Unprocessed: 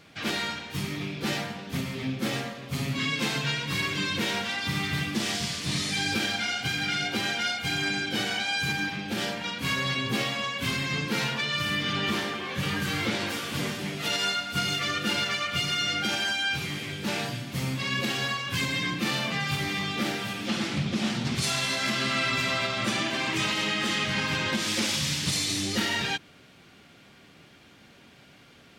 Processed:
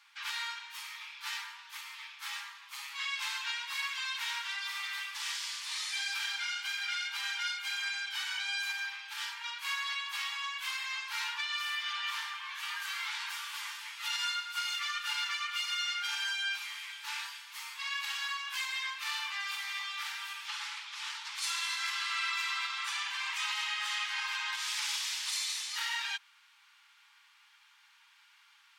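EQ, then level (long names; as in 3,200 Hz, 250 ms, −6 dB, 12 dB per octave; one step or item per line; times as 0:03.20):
linear-phase brick-wall high-pass 810 Hz
−6.0 dB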